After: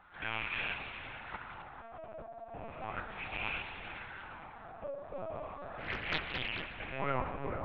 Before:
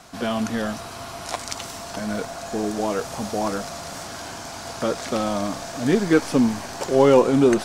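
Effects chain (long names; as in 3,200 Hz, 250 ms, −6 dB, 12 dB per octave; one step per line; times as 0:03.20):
loose part that buzzes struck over −32 dBFS, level −22 dBFS
first difference
hum removal 56.51 Hz, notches 27
in parallel at −2 dB: speech leveller 2 s
on the sum: auto-filter low-pass sine 0.35 Hz 660–2,600 Hz
tuned comb filter 140 Hz, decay 1.5 s, mix 70%
on a send: feedback echo with a low-pass in the loop 450 ms, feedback 59%, low-pass 1,100 Hz, level −5.5 dB
on the sum: spring reverb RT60 1.4 s, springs 46 ms, chirp 60 ms, DRR 9.5 dB
linear-prediction vocoder at 8 kHz pitch kept
0:05.78–0:06.77: highs frequency-modulated by the lows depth 0.81 ms
level +4.5 dB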